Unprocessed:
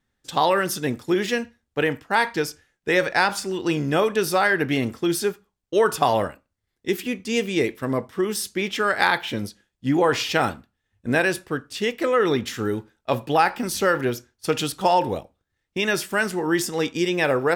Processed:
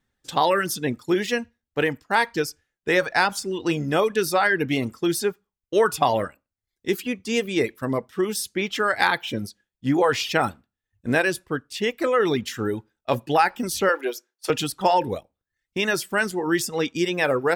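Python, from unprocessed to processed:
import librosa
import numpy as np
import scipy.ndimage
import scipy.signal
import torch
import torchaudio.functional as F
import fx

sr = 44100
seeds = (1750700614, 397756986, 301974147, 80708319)

y = fx.highpass(x, sr, hz=350.0, slope=24, at=(13.89, 14.5))
y = fx.dereverb_blind(y, sr, rt60_s=0.62)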